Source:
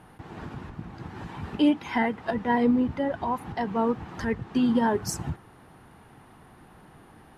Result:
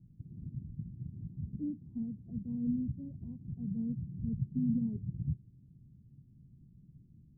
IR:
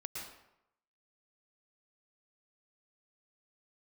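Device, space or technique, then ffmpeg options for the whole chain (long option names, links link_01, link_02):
the neighbour's flat through the wall: -filter_complex "[0:a]lowpass=frequency=210:width=0.5412,lowpass=frequency=210:width=1.3066,equalizer=frequency=130:width_type=o:width=0.65:gain=6,asettb=1/sr,asplit=3[link_01][link_02][link_03];[link_01]atrim=end=3.574[link_04];[link_02]atrim=start=3.57:end=4.9,asetpts=PTS-STARTPTS,afade=type=in:duration=0.004:curve=qsin,afade=type=out:start_time=1.326:duration=0.004:curve=qsin,equalizer=frequency=150:width_type=o:width=0.81:gain=5.5[link_05];[link_03]atrim=start=4.896[link_06];[link_04][link_05]acrossfade=duration=0.004:curve1=hsin:curve2=qsin[link_07];[link_07][link_06]acrossfade=duration=0.004:curve1=qsin:curve2=hsin,volume=-5dB"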